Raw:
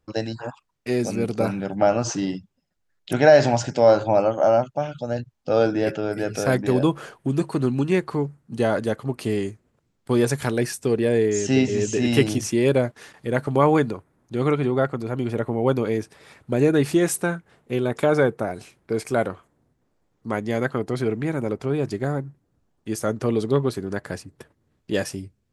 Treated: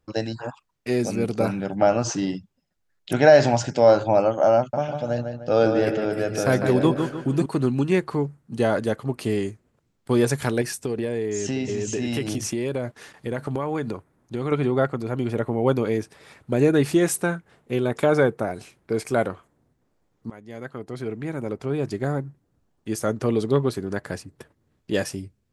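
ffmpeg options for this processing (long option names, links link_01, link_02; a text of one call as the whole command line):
ffmpeg -i in.wav -filter_complex "[0:a]asettb=1/sr,asplit=3[link_01][link_02][link_03];[link_01]atrim=end=4.584[link_04];[link_02]atrim=start=4.58:end=7.46,asetpts=PTS-STARTPTS,afade=type=in:duration=0.004:curve=qsin,afade=type=out:start_time=2.876:duration=0.004:curve=qsin,asplit=2[link_05][link_06];[link_06]adelay=151,lowpass=frequency=3600:poles=1,volume=-6dB,asplit=2[link_07][link_08];[link_08]adelay=151,lowpass=frequency=3600:poles=1,volume=0.41,asplit=2[link_09][link_10];[link_10]adelay=151,lowpass=frequency=3600:poles=1,volume=0.41,asplit=2[link_11][link_12];[link_12]adelay=151,lowpass=frequency=3600:poles=1,volume=0.41,asplit=2[link_13][link_14];[link_14]adelay=151,lowpass=frequency=3600:poles=1,volume=0.41[link_15];[link_05][link_07][link_09][link_11][link_13][link_15]amix=inputs=6:normalize=0,atrim=end_sample=127008[link_16];[link_03]atrim=start=7.456[link_17];[link_04][link_16]acrossfade=duration=0.004:curve1=hsin:curve2=qsin[link_18];[link_18][link_17]acrossfade=duration=0.004:curve1=qsin:curve2=hsin,asettb=1/sr,asplit=3[link_19][link_20][link_21];[link_19]atrim=end=10.614[link_22];[link_20]atrim=start=10.61:end=14.52,asetpts=PTS-STARTPTS,afade=type=in:duration=0.004:curve=qsin,afade=type=out:start_time=3.906:duration=0.004:curve=qsin,acompressor=threshold=-22dB:ratio=6:attack=3.2:release=140:knee=1:detection=peak[link_23];[link_21]atrim=start=14.516[link_24];[link_22][link_23]acrossfade=duration=0.004:curve1=hsin:curve2=qsin[link_25];[link_25][link_24]acrossfade=duration=0.004:curve1=qsin:curve2=hsin,asplit=2[link_26][link_27];[link_26]atrim=end=20.3,asetpts=PTS-STARTPTS,afade=type=out:start_time=20.296:duration=0.004:curve=hsin:silence=0.0891251[link_28];[link_27]atrim=start=20.3,asetpts=PTS-STARTPTS,afade=type=in:duration=1.85:silence=0.0891251[link_29];[link_28][link_29]concat=n=2:v=0:a=1" out.wav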